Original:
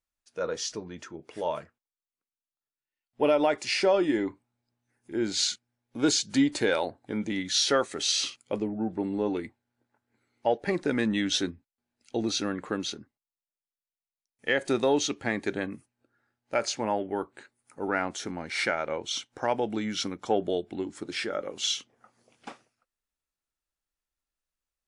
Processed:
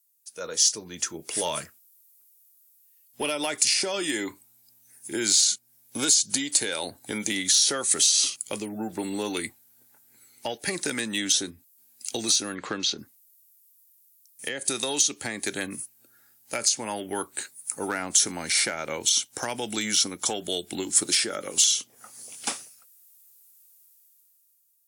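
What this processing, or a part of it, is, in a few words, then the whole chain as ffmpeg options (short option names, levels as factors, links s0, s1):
FM broadcast chain: -filter_complex "[0:a]highpass=72,dynaudnorm=f=200:g=11:m=4.22,acrossover=split=350|1100[s0][s1][s2];[s0]acompressor=threshold=0.0398:ratio=4[s3];[s1]acompressor=threshold=0.0355:ratio=4[s4];[s2]acompressor=threshold=0.0398:ratio=4[s5];[s3][s4][s5]amix=inputs=3:normalize=0,aemphasis=mode=production:type=75fm,alimiter=limit=0.211:level=0:latency=1:release=438,asoftclip=type=hard:threshold=0.168,lowpass=f=15000:w=0.5412,lowpass=f=15000:w=1.3066,aemphasis=mode=production:type=75fm,asplit=3[s6][s7][s8];[s6]afade=t=out:st=12.54:d=0.02[s9];[s7]lowpass=f=5100:w=0.5412,lowpass=f=5100:w=1.3066,afade=t=in:st=12.54:d=0.02,afade=t=out:st=12.97:d=0.02[s10];[s8]afade=t=in:st=12.97:d=0.02[s11];[s9][s10][s11]amix=inputs=3:normalize=0,volume=0.631"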